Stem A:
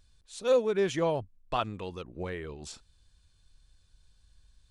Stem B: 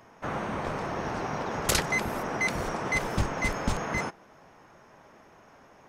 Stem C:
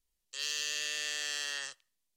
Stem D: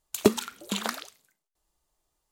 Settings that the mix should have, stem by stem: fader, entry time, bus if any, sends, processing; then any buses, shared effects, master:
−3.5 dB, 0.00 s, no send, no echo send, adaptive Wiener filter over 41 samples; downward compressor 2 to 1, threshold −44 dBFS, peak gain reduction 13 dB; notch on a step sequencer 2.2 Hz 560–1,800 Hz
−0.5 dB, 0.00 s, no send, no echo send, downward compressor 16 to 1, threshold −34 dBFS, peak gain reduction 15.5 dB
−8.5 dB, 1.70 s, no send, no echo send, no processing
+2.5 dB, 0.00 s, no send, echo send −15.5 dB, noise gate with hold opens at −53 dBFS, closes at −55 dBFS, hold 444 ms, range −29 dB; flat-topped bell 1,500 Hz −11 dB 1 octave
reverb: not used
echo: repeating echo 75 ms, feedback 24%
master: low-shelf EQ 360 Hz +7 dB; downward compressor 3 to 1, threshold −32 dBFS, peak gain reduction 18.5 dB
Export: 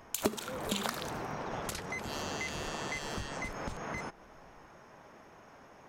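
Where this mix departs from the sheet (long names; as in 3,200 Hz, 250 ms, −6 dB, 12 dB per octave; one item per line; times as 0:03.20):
stem D: missing flat-topped bell 1,500 Hz −11 dB 1 octave
master: missing low-shelf EQ 360 Hz +7 dB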